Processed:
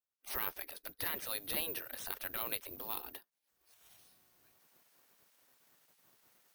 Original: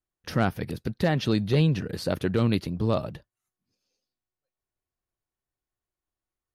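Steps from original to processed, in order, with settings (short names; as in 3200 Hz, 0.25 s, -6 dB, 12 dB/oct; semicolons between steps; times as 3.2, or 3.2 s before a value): block floating point 7-bit; recorder AGC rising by 34 dB/s; spectral gate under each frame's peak -15 dB weak; vibrato 2 Hz 29 cents; careless resampling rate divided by 3×, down filtered, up zero stuff; gain -7 dB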